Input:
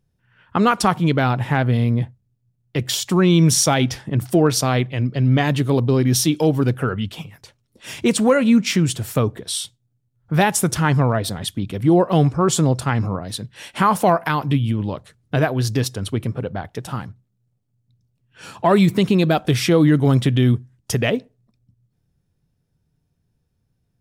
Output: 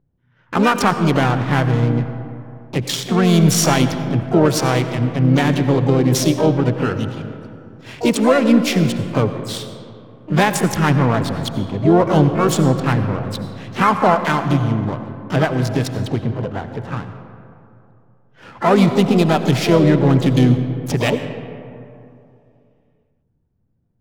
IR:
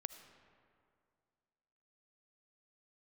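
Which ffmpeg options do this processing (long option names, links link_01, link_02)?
-filter_complex "[0:a]adynamicsmooth=sensitivity=3:basefreq=1300,asplit=3[link_01][link_02][link_03];[link_02]asetrate=55563,aresample=44100,atempo=0.793701,volume=-8dB[link_04];[link_03]asetrate=88200,aresample=44100,atempo=0.5,volume=-12dB[link_05];[link_01][link_04][link_05]amix=inputs=3:normalize=0[link_06];[1:a]atrim=start_sample=2205,asetrate=36603,aresample=44100[link_07];[link_06][link_07]afir=irnorm=-1:irlink=0,volume=3.5dB"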